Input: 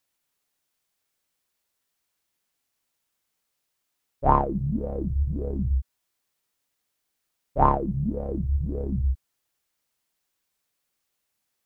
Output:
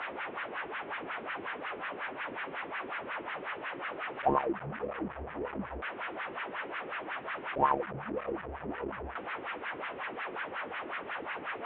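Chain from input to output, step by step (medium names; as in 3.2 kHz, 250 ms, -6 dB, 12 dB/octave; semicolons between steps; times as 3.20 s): one-bit delta coder 16 kbps, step -24.5 dBFS; wah-wah 5.5 Hz 320–1700 Hz, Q 2.1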